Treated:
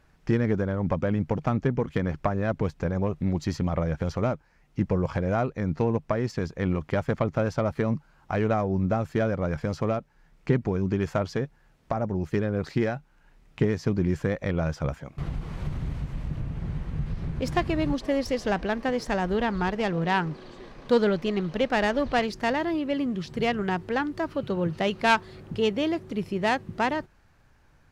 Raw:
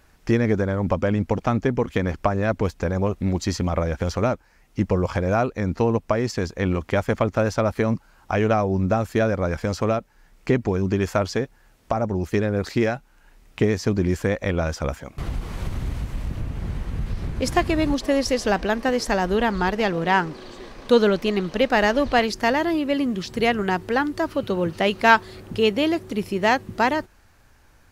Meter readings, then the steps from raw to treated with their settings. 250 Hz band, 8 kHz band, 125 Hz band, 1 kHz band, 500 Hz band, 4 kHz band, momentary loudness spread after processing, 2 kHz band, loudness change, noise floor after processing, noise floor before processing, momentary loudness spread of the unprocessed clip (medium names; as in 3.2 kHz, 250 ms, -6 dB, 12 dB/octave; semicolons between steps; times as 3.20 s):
-3.5 dB, -10.0 dB, -2.5 dB, -5.5 dB, -5.0 dB, -6.5 dB, 8 LU, -6.0 dB, -4.5 dB, -60 dBFS, -56 dBFS, 10 LU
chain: self-modulated delay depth 0.11 ms; low-pass 3.8 kHz 6 dB/octave; peaking EQ 150 Hz +10 dB 0.37 oct; trim -5 dB